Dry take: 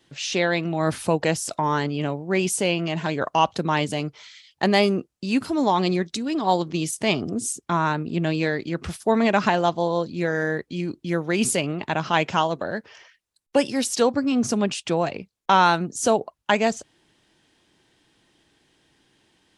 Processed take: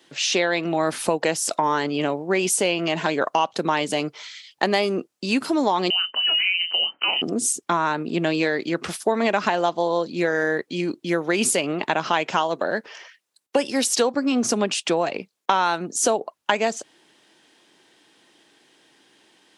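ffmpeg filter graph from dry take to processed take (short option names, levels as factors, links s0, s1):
-filter_complex "[0:a]asettb=1/sr,asplit=3[s0][s1][s2];[s0]atrim=end=5.904[s3];[s1]atrim=start=5.9:end=7.22,asetpts=PTS-STARTPTS,afade=t=in:d=0.004:c=qsin,afade=t=out:st=1.316:d=0.004:c=qsin,asplit=2[s4][s5];[s5]adelay=28,volume=0.398[s6];[s4][s6]amix=inputs=2:normalize=0,atrim=end_sample=58212,acompressor=threshold=0.0794:ratio=5:attack=3.2:release=140:knee=1:detection=peak,lowpass=f=2700:t=q:w=0.5098,lowpass=f=2700:t=q:w=0.6013,lowpass=f=2700:t=q:w=0.9,lowpass=f=2700:t=q:w=2.563,afreqshift=-3200[s7];[s2]atrim=start=7.216[s8];[s3][s7]acrossfade=d=0.004:c1=hsin:c2=qsin[s9];[s9][s8]acrossfade=d=0.004:c1=qsin:c2=hsin,highpass=280,acompressor=threshold=0.0631:ratio=4,volume=2.11"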